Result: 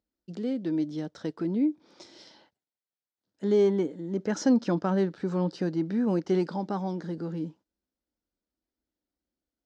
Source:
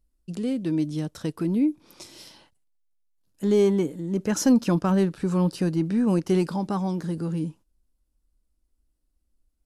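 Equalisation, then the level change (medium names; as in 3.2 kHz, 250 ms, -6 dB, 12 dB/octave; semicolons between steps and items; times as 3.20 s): cabinet simulation 110–6200 Hz, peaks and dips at 140 Hz -5 dB, 1.1 kHz -6 dB, 2.6 kHz -8 dB; bass shelf 190 Hz -9 dB; treble shelf 4.3 kHz -8.5 dB; 0.0 dB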